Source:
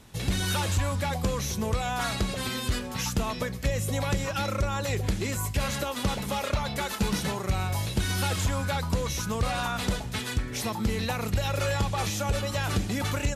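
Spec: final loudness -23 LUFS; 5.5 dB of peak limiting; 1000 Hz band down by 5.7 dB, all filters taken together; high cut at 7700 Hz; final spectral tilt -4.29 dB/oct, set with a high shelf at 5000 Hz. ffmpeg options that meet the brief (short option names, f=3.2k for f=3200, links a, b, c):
-af "lowpass=7.7k,equalizer=f=1k:t=o:g=-8,highshelf=f=5k:g=3.5,volume=8.5dB,alimiter=limit=-13.5dB:level=0:latency=1"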